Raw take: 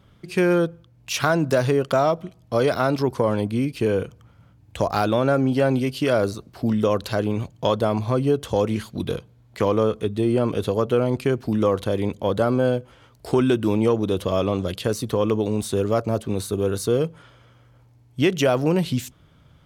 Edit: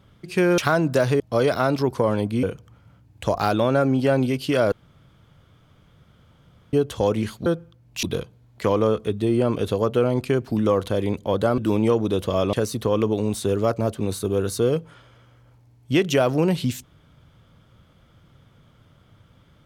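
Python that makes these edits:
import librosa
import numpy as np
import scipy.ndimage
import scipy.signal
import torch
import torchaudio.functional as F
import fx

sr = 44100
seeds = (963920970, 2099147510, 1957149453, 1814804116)

y = fx.edit(x, sr, fx.move(start_s=0.58, length_s=0.57, to_s=8.99),
    fx.cut(start_s=1.77, length_s=0.63),
    fx.cut(start_s=3.63, length_s=0.33),
    fx.room_tone_fill(start_s=6.25, length_s=2.01),
    fx.cut(start_s=12.54, length_s=1.02),
    fx.cut(start_s=14.51, length_s=0.3), tone=tone)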